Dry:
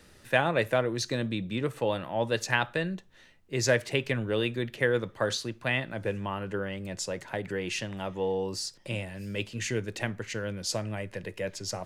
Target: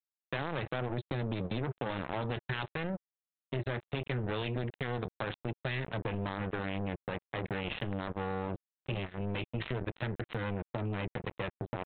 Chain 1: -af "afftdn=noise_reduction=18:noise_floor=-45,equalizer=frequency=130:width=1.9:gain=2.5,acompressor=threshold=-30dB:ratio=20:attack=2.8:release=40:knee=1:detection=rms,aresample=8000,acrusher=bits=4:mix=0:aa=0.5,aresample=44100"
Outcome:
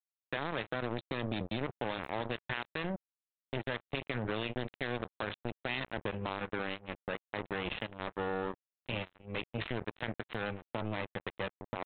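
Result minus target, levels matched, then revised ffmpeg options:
125 Hz band −5.0 dB
-af "afftdn=noise_reduction=18:noise_floor=-45,equalizer=frequency=130:width=1.9:gain=14,acompressor=threshold=-30dB:ratio=20:attack=2.8:release=40:knee=1:detection=rms,aresample=8000,acrusher=bits=4:mix=0:aa=0.5,aresample=44100"

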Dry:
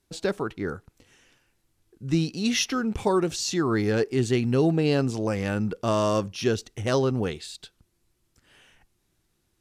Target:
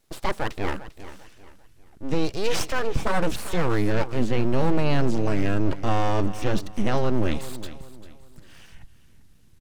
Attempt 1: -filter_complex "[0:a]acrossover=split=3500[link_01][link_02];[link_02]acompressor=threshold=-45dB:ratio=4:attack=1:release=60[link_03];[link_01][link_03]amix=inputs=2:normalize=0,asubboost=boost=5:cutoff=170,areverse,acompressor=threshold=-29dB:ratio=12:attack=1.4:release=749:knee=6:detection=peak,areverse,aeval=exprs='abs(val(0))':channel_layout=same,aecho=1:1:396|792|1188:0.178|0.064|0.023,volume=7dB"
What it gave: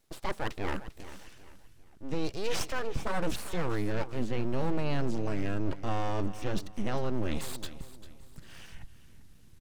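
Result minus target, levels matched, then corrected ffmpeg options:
downward compressor: peak gain reduction +8.5 dB
-filter_complex "[0:a]acrossover=split=3500[link_01][link_02];[link_02]acompressor=threshold=-45dB:ratio=4:attack=1:release=60[link_03];[link_01][link_03]amix=inputs=2:normalize=0,asubboost=boost=5:cutoff=170,areverse,acompressor=threshold=-19.5dB:ratio=12:attack=1.4:release=749:knee=6:detection=peak,areverse,aeval=exprs='abs(val(0))':channel_layout=same,aecho=1:1:396|792|1188:0.178|0.064|0.023,volume=7dB"

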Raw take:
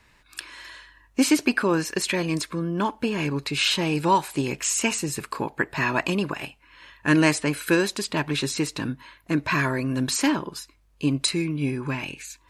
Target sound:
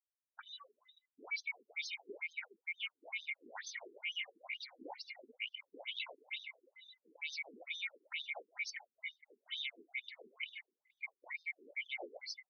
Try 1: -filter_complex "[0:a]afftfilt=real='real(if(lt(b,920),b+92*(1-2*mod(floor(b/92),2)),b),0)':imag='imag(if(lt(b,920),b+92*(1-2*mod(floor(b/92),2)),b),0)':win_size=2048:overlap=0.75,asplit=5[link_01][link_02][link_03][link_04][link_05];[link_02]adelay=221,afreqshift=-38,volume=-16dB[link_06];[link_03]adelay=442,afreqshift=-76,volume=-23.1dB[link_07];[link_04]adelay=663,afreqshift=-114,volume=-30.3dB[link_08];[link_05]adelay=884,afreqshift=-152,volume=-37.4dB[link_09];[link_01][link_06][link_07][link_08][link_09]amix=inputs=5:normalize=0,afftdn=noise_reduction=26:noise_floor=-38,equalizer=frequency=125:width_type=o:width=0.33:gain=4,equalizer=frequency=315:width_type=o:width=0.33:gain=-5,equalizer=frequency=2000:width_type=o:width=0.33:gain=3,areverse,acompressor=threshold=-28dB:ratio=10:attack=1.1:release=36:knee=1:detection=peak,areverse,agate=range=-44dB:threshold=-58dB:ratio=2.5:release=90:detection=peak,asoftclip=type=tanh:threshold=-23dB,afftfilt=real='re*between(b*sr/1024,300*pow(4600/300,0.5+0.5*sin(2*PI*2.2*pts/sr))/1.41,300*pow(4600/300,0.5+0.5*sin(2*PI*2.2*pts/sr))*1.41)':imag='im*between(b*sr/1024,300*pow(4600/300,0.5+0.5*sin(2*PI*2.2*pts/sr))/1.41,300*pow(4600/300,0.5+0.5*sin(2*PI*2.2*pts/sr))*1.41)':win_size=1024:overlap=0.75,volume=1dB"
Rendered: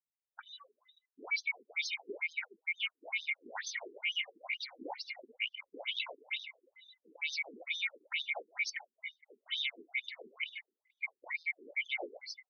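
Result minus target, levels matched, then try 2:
downward compressor: peak gain reduction −7 dB
-filter_complex "[0:a]afftfilt=real='real(if(lt(b,920),b+92*(1-2*mod(floor(b/92),2)),b),0)':imag='imag(if(lt(b,920),b+92*(1-2*mod(floor(b/92),2)),b),0)':win_size=2048:overlap=0.75,asplit=5[link_01][link_02][link_03][link_04][link_05];[link_02]adelay=221,afreqshift=-38,volume=-16dB[link_06];[link_03]adelay=442,afreqshift=-76,volume=-23.1dB[link_07];[link_04]adelay=663,afreqshift=-114,volume=-30.3dB[link_08];[link_05]adelay=884,afreqshift=-152,volume=-37.4dB[link_09];[link_01][link_06][link_07][link_08][link_09]amix=inputs=5:normalize=0,afftdn=noise_reduction=26:noise_floor=-38,equalizer=frequency=125:width_type=o:width=0.33:gain=4,equalizer=frequency=315:width_type=o:width=0.33:gain=-5,equalizer=frequency=2000:width_type=o:width=0.33:gain=3,areverse,acompressor=threshold=-35.5dB:ratio=10:attack=1.1:release=36:knee=1:detection=peak,areverse,agate=range=-44dB:threshold=-58dB:ratio=2.5:release=90:detection=peak,asoftclip=type=tanh:threshold=-23dB,afftfilt=real='re*between(b*sr/1024,300*pow(4600/300,0.5+0.5*sin(2*PI*2.2*pts/sr))/1.41,300*pow(4600/300,0.5+0.5*sin(2*PI*2.2*pts/sr))*1.41)':imag='im*between(b*sr/1024,300*pow(4600/300,0.5+0.5*sin(2*PI*2.2*pts/sr))/1.41,300*pow(4600/300,0.5+0.5*sin(2*PI*2.2*pts/sr))*1.41)':win_size=1024:overlap=0.75,volume=1dB"

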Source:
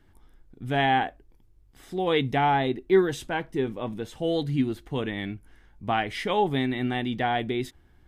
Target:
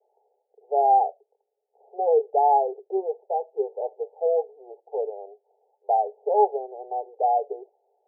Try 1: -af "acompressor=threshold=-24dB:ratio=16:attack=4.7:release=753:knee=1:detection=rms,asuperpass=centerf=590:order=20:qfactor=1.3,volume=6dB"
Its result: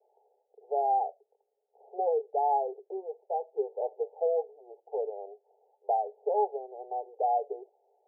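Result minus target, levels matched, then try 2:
downward compressor: peak gain reduction +12.5 dB
-af "asuperpass=centerf=590:order=20:qfactor=1.3,volume=6dB"

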